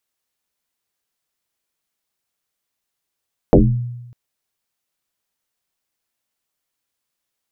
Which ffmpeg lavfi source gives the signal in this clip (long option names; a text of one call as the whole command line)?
ffmpeg -f lavfi -i "aevalsrc='0.631*pow(10,-3*t/1.01)*sin(2*PI*121*t+6.8*pow(10,-3*t/0.44)*sin(2*PI*0.76*121*t))':duration=0.6:sample_rate=44100" out.wav